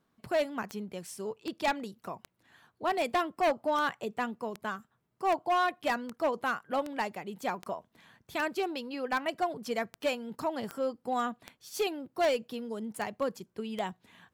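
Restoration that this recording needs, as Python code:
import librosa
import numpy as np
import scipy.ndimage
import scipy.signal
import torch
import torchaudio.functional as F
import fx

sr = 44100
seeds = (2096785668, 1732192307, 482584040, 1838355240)

y = fx.fix_declip(x, sr, threshold_db=-23.0)
y = fx.fix_declick_ar(y, sr, threshold=10.0)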